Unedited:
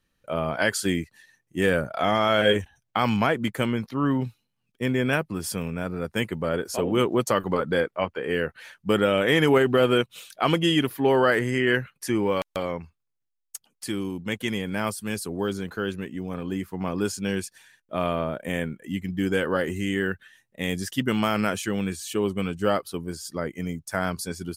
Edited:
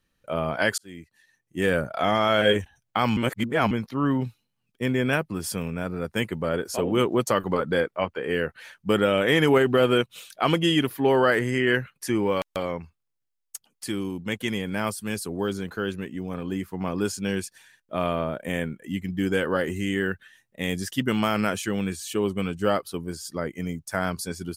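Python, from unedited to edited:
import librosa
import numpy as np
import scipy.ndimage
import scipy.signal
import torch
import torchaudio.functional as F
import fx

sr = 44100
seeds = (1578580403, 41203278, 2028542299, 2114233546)

y = fx.edit(x, sr, fx.fade_in_span(start_s=0.78, length_s=1.02),
    fx.reverse_span(start_s=3.17, length_s=0.54), tone=tone)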